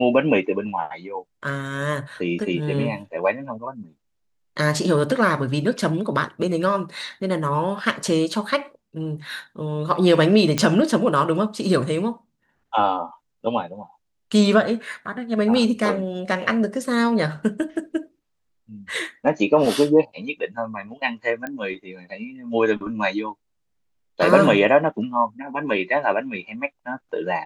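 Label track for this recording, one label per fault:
10.580000	10.580000	pop -6 dBFS
21.470000	21.470000	pop -17 dBFS

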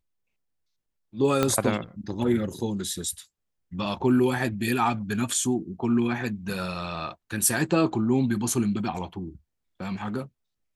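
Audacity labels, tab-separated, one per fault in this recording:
1.430000	1.430000	pop -8 dBFS

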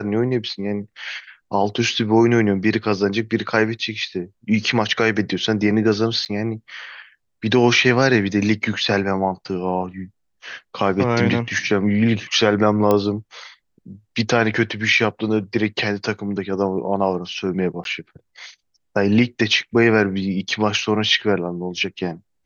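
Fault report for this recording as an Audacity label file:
6.250000	6.260000	dropout 8.2 ms
12.910000	12.910000	pop -6 dBFS
17.840000	17.850000	dropout 12 ms

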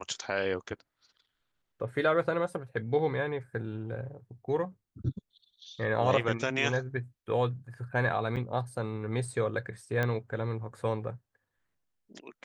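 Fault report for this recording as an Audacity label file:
8.360000	8.370000	dropout 7.6 ms
10.030000	10.030000	pop -17 dBFS

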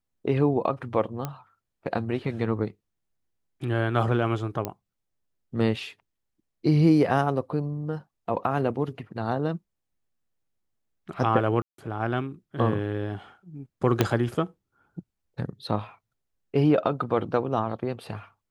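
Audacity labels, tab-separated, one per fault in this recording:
1.250000	1.250000	pop -16 dBFS
4.650000	4.650000	pop -14 dBFS
11.620000	11.780000	dropout 163 ms
14.010000	14.010000	pop -6 dBFS

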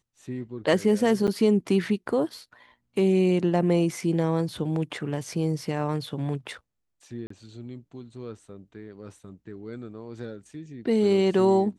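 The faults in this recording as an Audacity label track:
1.270000	1.280000	dropout 7.9 ms
7.270000	7.300000	dropout 34 ms

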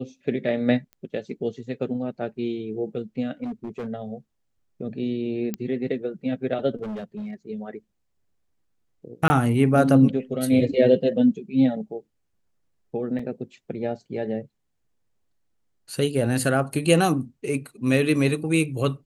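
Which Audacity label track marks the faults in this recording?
0.930000	0.930000	pop -29 dBFS
3.430000	3.880000	clipped -27.5 dBFS
5.540000	5.540000	pop -14 dBFS
6.820000	7.340000	clipped -29 dBFS
9.280000	9.300000	dropout 20 ms
13.190000	13.190000	dropout 3.6 ms

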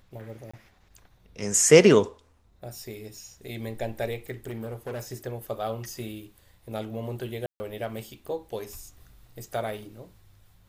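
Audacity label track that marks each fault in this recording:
0.510000	0.540000	dropout 25 ms
4.440000	5.120000	clipped -30.5 dBFS
7.460000	7.600000	dropout 140 ms

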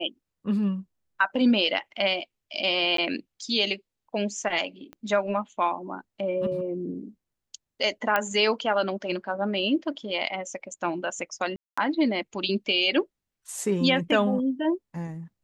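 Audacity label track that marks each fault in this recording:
2.970000	2.980000	dropout 13 ms
4.930000	4.930000	pop -28 dBFS
8.160000	8.160000	pop -10 dBFS
11.560000	11.780000	dropout 215 ms

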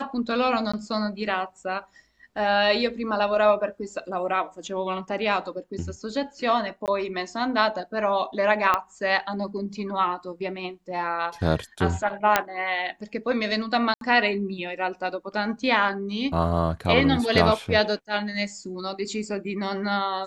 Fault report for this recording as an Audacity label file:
0.720000	0.730000	dropout 15 ms
6.860000	6.880000	dropout 18 ms
8.740000	8.740000	pop -9 dBFS
12.360000	12.360000	pop -3 dBFS
13.940000	14.010000	dropout 72 ms

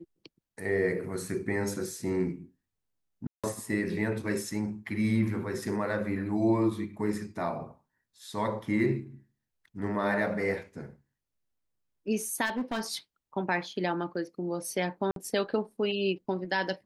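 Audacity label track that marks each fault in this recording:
3.270000	3.440000	dropout 166 ms
12.450000	12.810000	clipped -26.5 dBFS
15.110000	15.160000	dropout 52 ms

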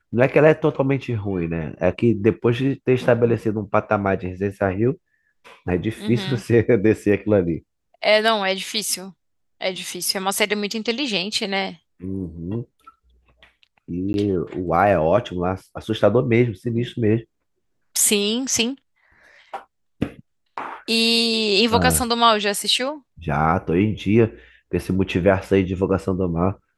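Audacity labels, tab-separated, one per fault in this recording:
14.130000	14.140000	dropout 11 ms

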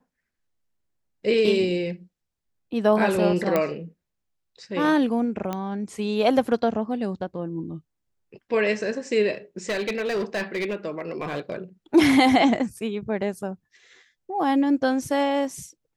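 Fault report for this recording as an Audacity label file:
3.560000	3.560000	pop -9 dBFS
5.530000	5.530000	pop -15 dBFS
9.690000	11.560000	clipped -22 dBFS

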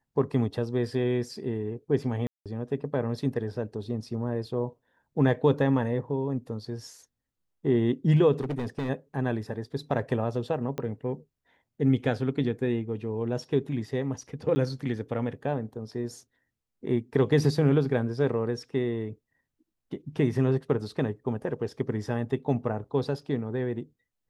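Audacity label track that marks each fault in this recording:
2.270000	2.460000	dropout 187 ms
8.400000	8.900000	clipped -26.5 dBFS
10.780000	10.780000	pop -19 dBFS
14.550000	14.560000	dropout 10 ms

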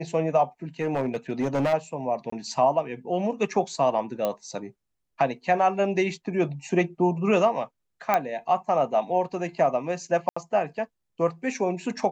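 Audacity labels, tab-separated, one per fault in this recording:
0.810000	1.740000	clipped -20.5 dBFS
2.300000	2.320000	dropout 24 ms
4.250000	4.250000	pop -13 dBFS
8.140000	8.140000	pop -9 dBFS
10.290000	10.370000	dropout 75 ms

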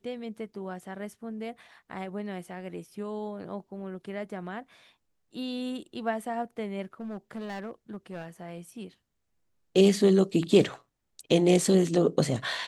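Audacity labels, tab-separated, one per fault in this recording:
7.000000	8.260000	clipped -33 dBFS

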